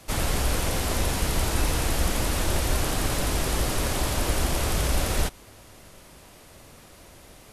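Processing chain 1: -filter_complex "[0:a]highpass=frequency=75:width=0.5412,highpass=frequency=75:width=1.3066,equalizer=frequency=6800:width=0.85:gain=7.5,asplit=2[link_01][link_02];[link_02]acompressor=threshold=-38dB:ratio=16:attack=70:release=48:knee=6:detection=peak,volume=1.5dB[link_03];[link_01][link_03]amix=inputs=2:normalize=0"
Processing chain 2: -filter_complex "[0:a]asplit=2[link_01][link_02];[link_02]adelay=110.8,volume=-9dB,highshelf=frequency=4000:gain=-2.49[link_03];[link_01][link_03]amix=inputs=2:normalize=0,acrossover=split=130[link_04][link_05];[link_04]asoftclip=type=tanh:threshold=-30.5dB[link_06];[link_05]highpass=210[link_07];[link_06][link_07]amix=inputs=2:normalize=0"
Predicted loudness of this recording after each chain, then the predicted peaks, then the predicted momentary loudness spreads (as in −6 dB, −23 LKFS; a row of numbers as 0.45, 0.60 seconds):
−21.0, −27.5 LKFS; −8.5, −14.0 dBFS; 18, 0 LU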